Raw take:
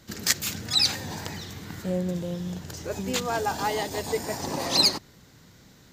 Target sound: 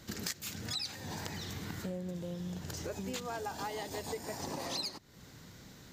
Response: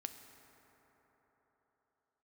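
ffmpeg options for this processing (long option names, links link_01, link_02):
-af "acompressor=threshold=-37dB:ratio=6"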